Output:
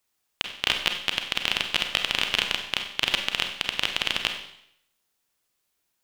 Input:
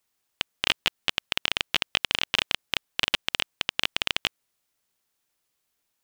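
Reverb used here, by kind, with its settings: Schroeder reverb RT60 0.72 s, combs from 31 ms, DRR 4.5 dB

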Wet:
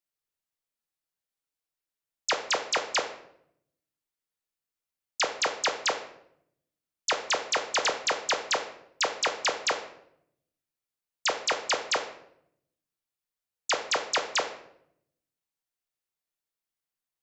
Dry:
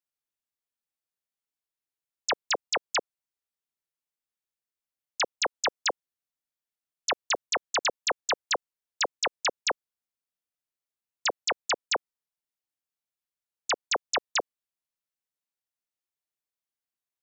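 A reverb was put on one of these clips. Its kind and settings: simulated room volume 160 m³, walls mixed, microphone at 0.54 m

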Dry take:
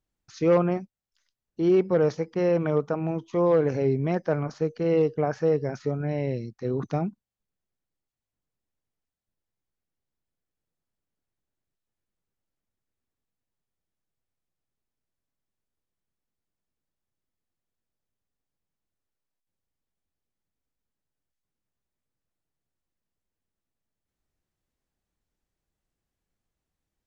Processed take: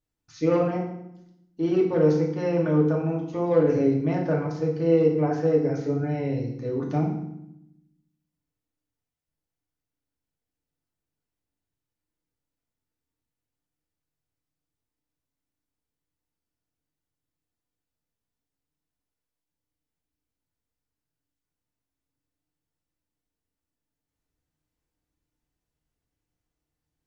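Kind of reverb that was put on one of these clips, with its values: FDN reverb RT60 0.79 s, low-frequency decay 1.6×, high-frequency decay 0.85×, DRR -2 dB; trim -4.5 dB

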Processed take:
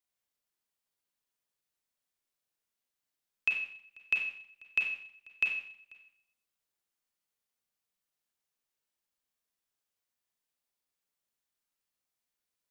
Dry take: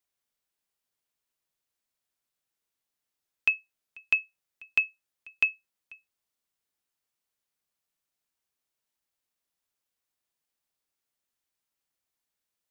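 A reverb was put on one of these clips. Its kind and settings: Schroeder reverb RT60 0.63 s, combs from 31 ms, DRR 1 dB; trim -5 dB

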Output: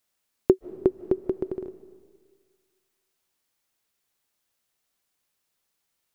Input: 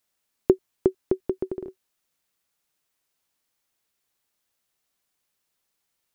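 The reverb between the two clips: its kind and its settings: algorithmic reverb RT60 1.8 s, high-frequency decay 0.95×, pre-delay 110 ms, DRR 16.5 dB

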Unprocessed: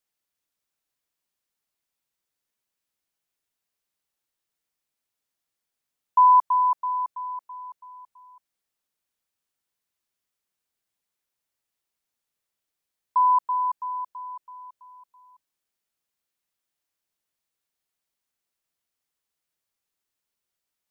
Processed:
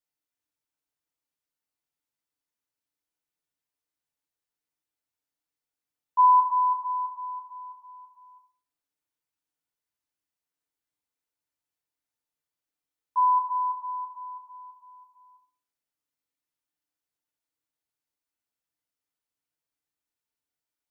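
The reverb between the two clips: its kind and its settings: FDN reverb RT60 0.43 s, low-frequency decay 1.25×, high-frequency decay 0.5×, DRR -0.5 dB; trim -9 dB

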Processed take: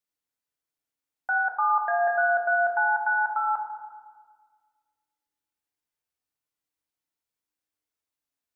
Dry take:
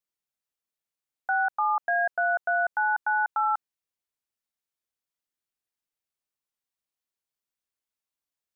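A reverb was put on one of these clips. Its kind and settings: FDN reverb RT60 1.6 s, low-frequency decay 1.2×, high-frequency decay 0.3×, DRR 1.5 dB; trim -1 dB

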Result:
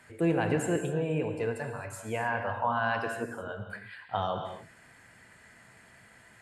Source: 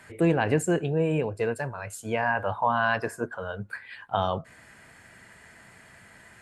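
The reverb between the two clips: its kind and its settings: gated-style reverb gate 290 ms flat, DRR 4.5 dB; trim -5.5 dB

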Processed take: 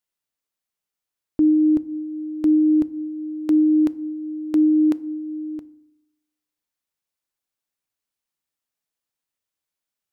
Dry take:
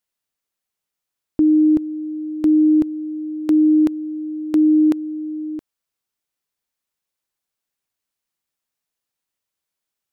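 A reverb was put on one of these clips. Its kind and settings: FDN reverb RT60 0.67 s, low-frequency decay 1.4×, high-frequency decay 0.6×, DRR 16.5 dB; trim -3.5 dB

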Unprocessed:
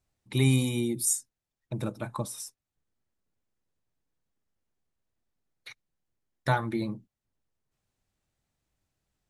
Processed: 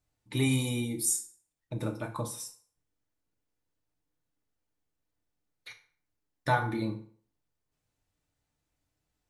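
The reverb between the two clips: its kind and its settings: FDN reverb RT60 0.51 s, low-frequency decay 0.8×, high-frequency decay 0.75×, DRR 2.5 dB; trim -2.5 dB

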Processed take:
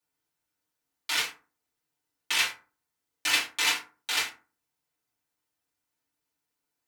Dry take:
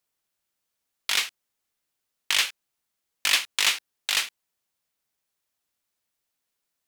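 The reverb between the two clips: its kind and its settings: FDN reverb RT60 0.36 s, low-frequency decay 1.25×, high-frequency decay 0.5×, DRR -9 dB; trim -10 dB

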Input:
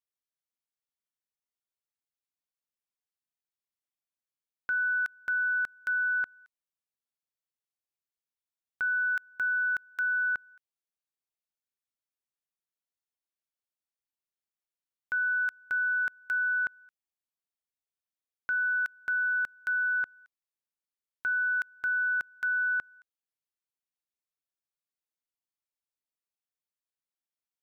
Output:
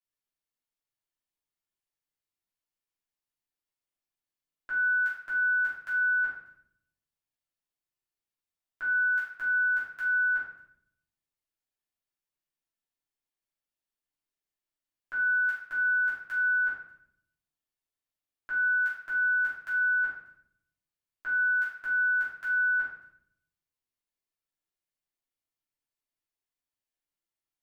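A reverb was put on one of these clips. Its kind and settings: simulated room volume 140 m³, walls mixed, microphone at 3 m; trim -9.5 dB

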